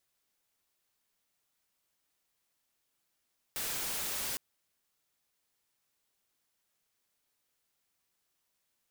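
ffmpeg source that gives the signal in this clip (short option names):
-f lavfi -i "anoisesrc=c=white:a=0.0274:d=0.81:r=44100:seed=1"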